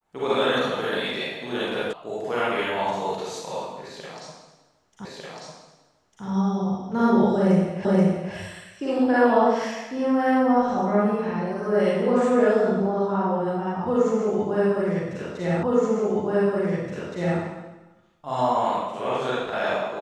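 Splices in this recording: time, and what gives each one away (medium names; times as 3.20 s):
1.93 s: sound stops dead
5.05 s: repeat of the last 1.2 s
7.85 s: repeat of the last 0.48 s
15.63 s: repeat of the last 1.77 s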